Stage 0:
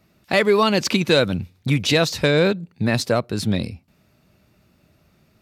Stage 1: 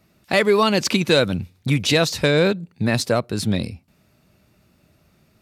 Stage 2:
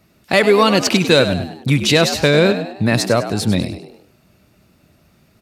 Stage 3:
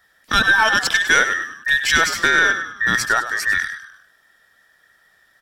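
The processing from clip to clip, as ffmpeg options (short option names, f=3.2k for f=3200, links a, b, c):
-af "equalizer=f=9.4k:t=o:w=0.91:g=3.5"
-filter_complex "[0:a]asplit=5[a][b][c][d][e];[b]adelay=100,afreqshift=68,volume=-11dB[f];[c]adelay=200,afreqshift=136,volume=-18.3dB[g];[d]adelay=300,afreqshift=204,volume=-25.7dB[h];[e]adelay=400,afreqshift=272,volume=-33dB[i];[a][f][g][h][i]amix=inputs=5:normalize=0,volume=4dB"
-af "afftfilt=real='real(if(between(b,1,1012),(2*floor((b-1)/92)+1)*92-b,b),0)':imag='imag(if(between(b,1,1012),(2*floor((b-1)/92)+1)*92-b,b),0)*if(between(b,1,1012),-1,1)':win_size=2048:overlap=0.75,aeval=exprs='1.06*(cos(1*acos(clip(val(0)/1.06,-1,1)))-cos(1*PI/2))+0.106*(cos(2*acos(clip(val(0)/1.06,-1,1)))-cos(2*PI/2))':c=same,volume=-3dB"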